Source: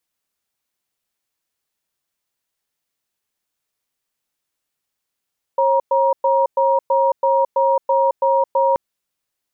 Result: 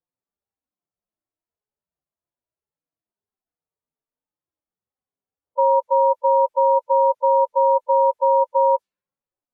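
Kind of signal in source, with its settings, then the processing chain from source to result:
cadence 542 Hz, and 947 Hz, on 0.22 s, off 0.11 s, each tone -15.5 dBFS 3.18 s
median-filter separation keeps harmonic; low-pass opened by the level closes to 830 Hz, open at -15 dBFS

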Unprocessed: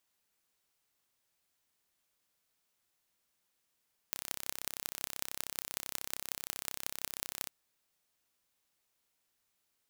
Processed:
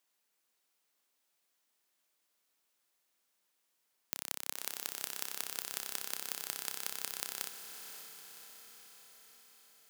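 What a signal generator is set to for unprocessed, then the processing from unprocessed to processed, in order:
pulse train 32.9/s, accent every 6, -6.5 dBFS 3.36 s
HPF 230 Hz 12 dB/oct; on a send: diffused feedback echo 0.552 s, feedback 61%, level -8.5 dB

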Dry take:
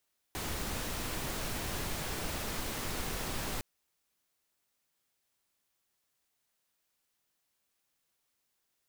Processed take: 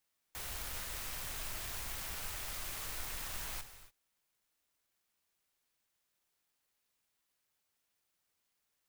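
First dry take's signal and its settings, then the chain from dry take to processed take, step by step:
noise pink, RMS -36.5 dBFS 3.26 s
passive tone stack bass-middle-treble 10-0-10; non-linear reverb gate 0.31 s flat, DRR 10 dB; clock jitter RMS 0.068 ms

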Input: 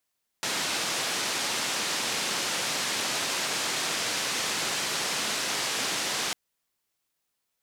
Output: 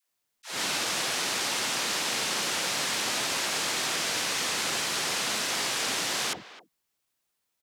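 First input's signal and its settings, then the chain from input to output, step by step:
noise band 170–6400 Hz, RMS -29.5 dBFS 5.90 s
dispersion lows, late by 0.101 s, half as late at 500 Hz; speakerphone echo 0.26 s, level -15 dB; auto swell 0.195 s

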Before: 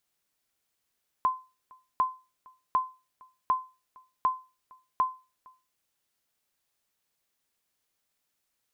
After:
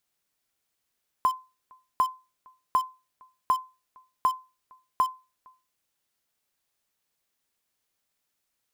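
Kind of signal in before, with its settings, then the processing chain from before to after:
sonar ping 1030 Hz, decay 0.30 s, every 0.75 s, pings 6, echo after 0.46 s, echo -27.5 dB -17 dBFS
in parallel at -10 dB: bit-crush 5-bit

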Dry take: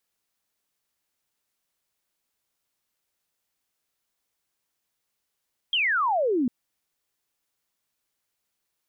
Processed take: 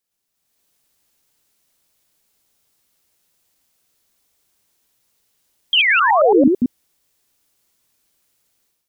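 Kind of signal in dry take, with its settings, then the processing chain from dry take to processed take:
laser zap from 3300 Hz, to 230 Hz, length 0.75 s sine, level -20.5 dB
reverse delay 0.111 s, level -1.5 dB; bell 1400 Hz -5 dB 2.6 oct; AGC gain up to 12 dB

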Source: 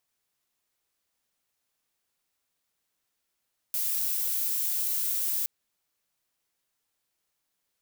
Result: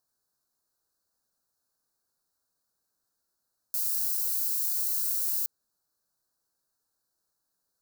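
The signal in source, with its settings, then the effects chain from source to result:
noise violet, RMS -28.5 dBFS 1.72 s
elliptic band-stop 1600–4100 Hz, stop band 60 dB

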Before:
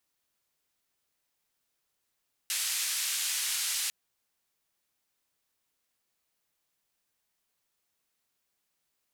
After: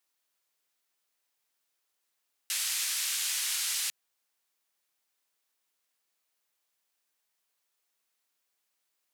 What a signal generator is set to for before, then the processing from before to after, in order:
noise band 2100–11000 Hz, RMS -31.5 dBFS 1.40 s
HPF 480 Hz 6 dB/oct

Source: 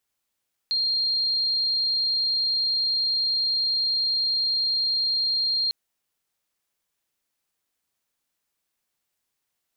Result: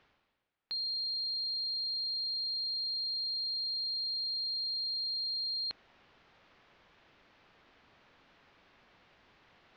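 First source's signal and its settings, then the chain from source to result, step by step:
tone sine 4210 Hz -21 dBFS 5.00 s
reverse; upward compressor, threshold -34 dBFS; reverse; Gaussian blur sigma 2.7 samples

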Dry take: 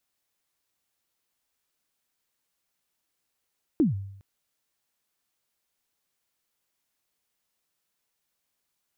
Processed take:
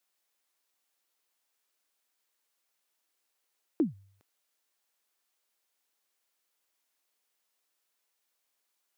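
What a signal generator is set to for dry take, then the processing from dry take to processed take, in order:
kick drum length 0.41 s, from 350 Hz, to 98 Hz, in 0.141 s, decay 0.75 s, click off, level -15.5 dB
HPF 340 Hz 12 dB/oct

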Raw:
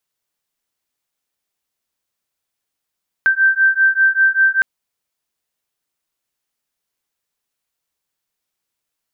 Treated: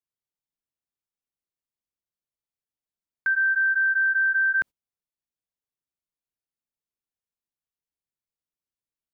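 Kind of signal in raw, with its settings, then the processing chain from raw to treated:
beating tones 1560 Hz, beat 5.1 Hz, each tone -14 dBFS 1.36 s
gate -24 dBFS, range -20 dB; low shelf 480 Hz +11.5 dB; limiter -18 dBFS

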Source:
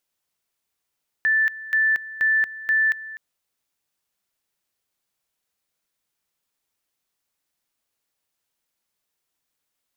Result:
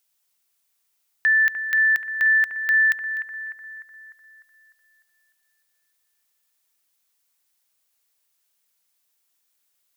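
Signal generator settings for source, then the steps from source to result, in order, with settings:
two-level tone 1760 Hz -16 dBFS, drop 17 dB, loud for 0.23 s, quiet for 0.25 s, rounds 4
tilt +2.5 dB/oct; on a send: analogue delay 0.3 s, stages 4096, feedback 54%, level -8.5 dB

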